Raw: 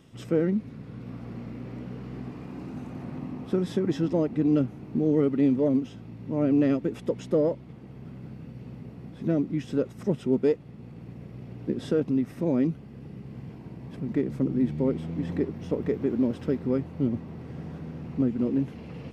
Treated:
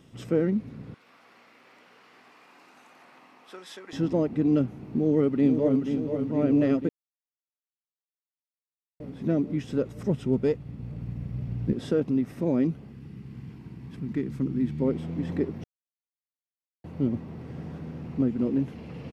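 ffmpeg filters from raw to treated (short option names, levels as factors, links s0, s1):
-filter_complex "[0:a]asettb=1/sr,asplit=3[s0][s1][s2];[s0]atrim=end=0.944[s3];[s1]atrim=start=0.94:end=3.93,asetpts=PTS-STARTPTS,afade=t=in:d=0.004:c=qsin,afade=t=out:st=2.986:d=0.004:c=qsin,highpass=1100[s4];[s2]atrim=start=3.926[s5];[s3][s4]acrossfade=d=0.004:c1=hsin:c2=qsin[s6];[s6][s5]acrossfade=d=0.004:c1=qsin:c2=hsin,asplit=2[s7][s8];[s8]afade=t=in:st=4.87:d=0.01,afade=t=out:st=5.82:d=0.01,aecho=0:1:480|960|1440|1920|2400|2880|3360|3840|4320|4800|5280|5760:0.446684|0.335013|0.25126|0.188445|0.141333|0.106|0.0795001|0.0596251|0.0447188|0.0335391|0.0251543|0.0188657[s9];[s7][s9]amix=inputs=2:normalize=0,asettb=1/sr,asplit=3[s10][s11][s12];[s10]atrim=end=9.524[s13];[s11]atrim=start=9.52:end=11.73,asetpts=PTS-STARTPTS,afade=t=in:d=0.004:c=qsin,afade=t=out:st=2.206:d=0.004:c=qsin,asubboost=boost=9:cutoff=150[s14];[s12]atrim=start=11.726[s15];[s13][s14]acrossfade=d=0.004:c1=hsin:c2=qsin[s16];[s16][s15]acrossfade=d=0.004:c1=qsin:c2=hsin,asettb=1/sr,asplit=3[s17][s18][s19];[s17]atrim=end=12.924[s20];[s18]atrim=start=12.92:end=14.82,asetpts=PTS-STARTPTS,afade=t=in:d=0.004:c=qsin,afade=t=out:st=1.896:d=0.004:c=qsin,equalizer=f=590:w=1.4:g=-12.5[s21];[s19]atrim=start=14.816[s22];[s20][s21]acrossfade=d=0.004:c1=hsin:c2=qsin[s23];[s23][s22]acrossfade=d=0.004:c1=qsin:c2=hsin,asplit=5[s24][s25][s26][s27][s28];[s24]atrim=end=6.89,asetpts=PTS-STARTPTS,afade=t=out:st=6.886:d=0.004:c=hsin[s29];[s25]atrim=start=6.89:end=9,asetpts=PTS-STARTPTS,volume=0[s30];[s26]atrim=start=9:end=15.64,asetpts=PTS-STARTPTS,afade=t=in:d=0.004:c=hsin,afade=t=out:st=6.636:d=0.004:c=hsin[s31];[s27]atrim=start=15.64:end=16.84,asetpts=PTS-STARTPTS,volume=0[s32];[s28]atrim=start=16.84,asetpts=PTS-STARTPTS,afade=t=in:d=0.004:c=hsin[s33];[s29][s30][s31][s32][s33]concat=n=5:v=0:a=1"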